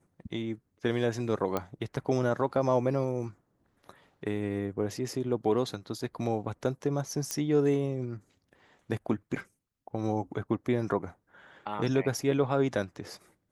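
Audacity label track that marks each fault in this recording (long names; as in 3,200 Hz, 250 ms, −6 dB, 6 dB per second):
1.570000	1.570000	click −16 dBFS
7.310000	7.310000	click −15 dBFS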